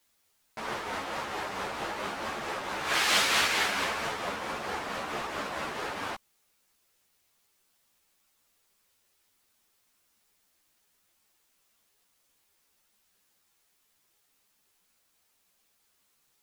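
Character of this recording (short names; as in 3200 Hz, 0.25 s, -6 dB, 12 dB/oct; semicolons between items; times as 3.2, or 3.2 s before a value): tremolo triangle 4.5 Hz, depth 40%; a quantiser's noise floor 12-bit, dither triangular; a shimmering, thickened sound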